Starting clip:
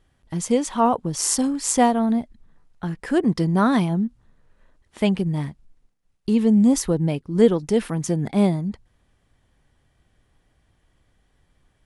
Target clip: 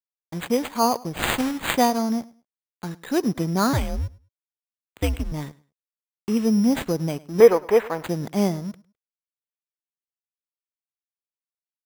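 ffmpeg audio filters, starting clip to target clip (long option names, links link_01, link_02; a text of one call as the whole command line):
ffmpeg -i in.wav -filter_complex "[0:a]aeval=exprs='sgn(val(0))*max(abs(val(0))-0.00944,0)':channel_layout=same,lowshelf=frequency=100:gain=-11.5,asettb=1/sr,asplit=3[link_01][link_02][link_03];[link_01]atrim=end=1.224[link_04];[link_02]atrim=start=1.22:end=1.71,asetpts=PTS-STARTPTS,afade=type=in:duration=0.004:curve=qsin,afade=type=out:start_time=0.486:duration=0.004:curve=qsin,acrusher=bits=2:mode=log:mix=0:aa=0.000001[link_05];[link_03]atrim=start=1.706[link_06];[link_04][link_05]acrossfade=duration=0.004:curve1=hsin:curve2=qsin[link_07];[link_07][link_06]acrossfade=duration=0.004:curve1=qsin:curve2=hsin,asettb=1/sr,asplit=3[link_08][link_09][link_10];[link_08]atrim=end=3.734[link_11];[link_09]atrim=start=3.73:end=5.32,asetpts=PTS-STARTPTS,afade=type=in:duration=0.004:curve=qsin,afade=type=out:start_time=1.586:duration=0.004:curve=qsin,afreqshift=-130[link_12];[link_10]atrim=start=5.316[link_13];[link_11][link_12]acrossfade=duration=0.004:curve1=hsin:curve2=qsin[link_14];[link_14][link_13]acrossfade=duration=0.004:curve1=qsin:curve2=hsin,acrusher=samples=8:mix=1:aa=0.000001,asettb=1/sr,asplit=3[link_15][link_16][link_17];[link_15]atrim=end=7.404[link_18];[link_16]atrim=start=7.4:end=8.03,asetpts=PTS-STARTPTS,afade=type=in:duration=0.004:curve=qsin,afade=type=out:start_time=0.626:duration=0.004:curve=qsin,equalizer=frequency=125:width_type=o:width=1:gain=-11,equalizer=frequency=250:width_type=o:width=1:gain=-6,equalizer=frequency=500:width_type=o:width=1:gain=8,equalizer=frequency=1000:width_type=o:width=1:gain=8,equalizer=frequency=2000:width_type=o:width=1:gain=8,equalizer=frequency=4000:width_type=o:width=1:gain=-5,equalizer=frequency=8000:width_type=o:width=1:gain=-7[link_19];[link_17]atrim=start=8.026[link_20];[link_18][link_19]acrossfade=duration=0.004:curve1=hsin:curve2=qsin[link_21];[link_21][link_20]acrossfade=duration=0.004:curve1=qsin:curve2=hsin,asplit=2[link_22][link_23];[link_23]aecho=0:1:104|208:0.0841|0.0177[link_24];[link_22][link_24]amix=inputs=2:normalize=0,volume=-1dB" out.wav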